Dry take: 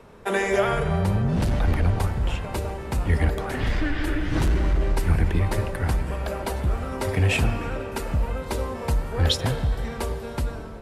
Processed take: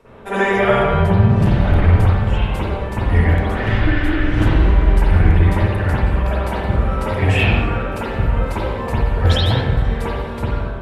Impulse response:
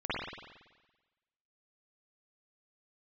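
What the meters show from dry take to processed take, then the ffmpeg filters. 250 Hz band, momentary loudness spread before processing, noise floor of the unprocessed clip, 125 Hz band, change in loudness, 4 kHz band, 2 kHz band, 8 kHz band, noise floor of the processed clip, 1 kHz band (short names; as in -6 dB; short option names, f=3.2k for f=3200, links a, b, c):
+8.0 dB, 8 LU, -35 dBFS, +8.5 dB, +8.0 dB, +5.0 dB, +8.0 dB, n/a, -25 dBFS, +8.5 dB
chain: -filter_complex "[1:a]atrim=start_sample=2205,afade=t=out:st=0.34:d=0.01,atrim=end_sample=15435[a];[0:a][a]afir=irnorm=-1:irlink=0"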